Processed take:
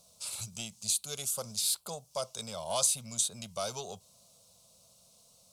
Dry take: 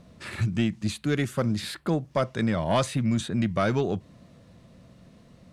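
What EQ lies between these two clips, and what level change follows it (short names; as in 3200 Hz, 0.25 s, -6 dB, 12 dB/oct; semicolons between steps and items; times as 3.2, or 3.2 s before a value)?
tone controls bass -11 dB, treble +13 dB; high shelf 3500 Hz +11 dB; fixed phaser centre 750 Hz, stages 4; -8.5 dB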